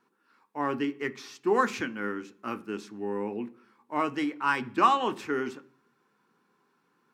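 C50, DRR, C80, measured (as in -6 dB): 19.5 dB, 8.5 dB, 24.5 dB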